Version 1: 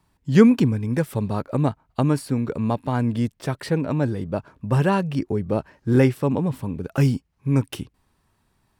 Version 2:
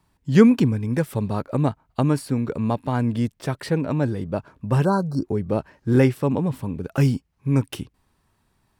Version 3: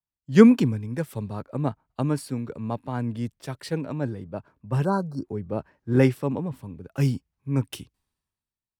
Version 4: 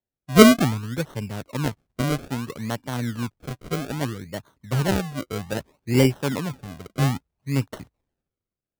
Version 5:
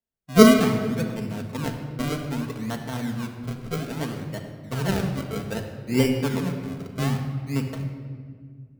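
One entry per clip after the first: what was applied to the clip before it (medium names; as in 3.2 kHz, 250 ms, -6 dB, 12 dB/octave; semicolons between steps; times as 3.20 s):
spectral replace 4.87–5.23 s, 1.6–3.9 kHz after
three bands expanded up and down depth 70%; trim -5.5 dB
decimation with a swept rate 34×, swing 100% 0.62 Hz; trim +1 dB
simulated room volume 3000 m³, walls mixed, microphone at 1.6 m; trim -4 dB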